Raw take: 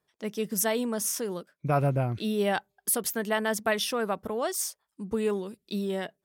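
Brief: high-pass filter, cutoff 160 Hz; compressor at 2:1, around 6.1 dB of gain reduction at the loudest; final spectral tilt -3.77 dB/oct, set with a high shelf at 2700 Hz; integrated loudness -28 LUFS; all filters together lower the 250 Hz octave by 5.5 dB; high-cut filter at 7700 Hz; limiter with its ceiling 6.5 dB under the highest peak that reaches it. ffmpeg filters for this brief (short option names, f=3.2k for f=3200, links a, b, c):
-af "highpass=160,lowpass=7.7k,equalizer=f=250:t=o:g=-5.5,highshelf=f=2.7k:g=8.5,acompressor=threshold=-32dB:ratio=2,volume=7dB,alimiter=limit=-17dB:level=0:latency=1"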